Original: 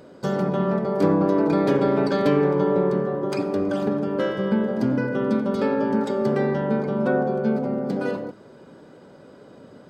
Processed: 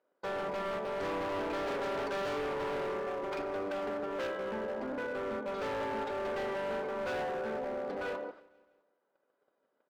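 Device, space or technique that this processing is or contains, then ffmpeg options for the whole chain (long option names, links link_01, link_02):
walkie-talkie: -filter_complex "[0:a]asettb=1/sr,asplit=3[link_01][link_02][link_03];[link_01]atrim=end=4.274[link_04];[link_02]atrim=start=4.27:end=5.48,asetpts=PTS-STARTPTS,afade=type=in:duration=0.004:curve=qsin,afade=type=out:start_time=1.206:duration=0.004:curve=qsin,highshelf=frequency=2100:gain=-9[link_05];[link_03]atrim=start=5.476[link_06];[link_04][link_05]acrossfade=duration=0.004:curve1=hsin:curve2=qsin[link_07];[link_07][link_06]acrossfade=duration=0.004:curve1=qsin:curve2=hsin,highpass=590,lowpass=2600,asoftclip=type=hard:threshold=-30.5dB,agate=range=-24dB:threshold=-48dB:ratio=16:detection=peak,aecho=1:1:164|328|492|656:0.075|0.0405|0.0219|0.0118,volume=-2.5dB"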